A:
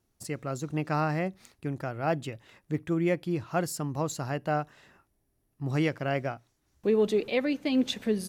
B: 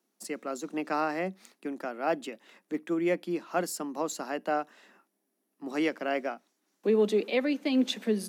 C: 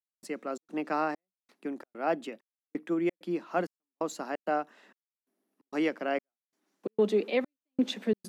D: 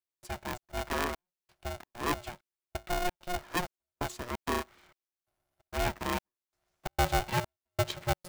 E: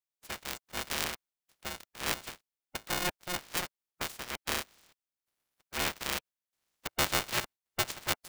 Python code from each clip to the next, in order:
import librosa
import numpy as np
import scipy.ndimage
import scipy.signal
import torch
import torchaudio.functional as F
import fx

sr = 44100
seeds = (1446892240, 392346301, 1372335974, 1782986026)

y1 = scipy.signal.sosfilt(scipy.signal.butter(12, 190.0, 'highpass', fs=sr, output='sos'), x)
y2 = fx.high_shelf(y1, sr, hz=4000.0, db=-7.5)
y2 = fx.step_gate(y2, sr, bpm=131, pattern='..xxx.xxxx.', floor_db=-60.0, edge_ms=4.5)
y3 = np.where(y2 < 0.0, 10.0 ** (-7.0 / 20.0) * y2, y2)
y3 = y3 * np.sign(np.sin(2.0 * np.pi * 360.0 * np.arange(len(y3)) / sr))
y4 = fx.spec_clip(y3, sr, under_db=21)
y4 = y4 * 10.0 ** (-2.0 / 20.0)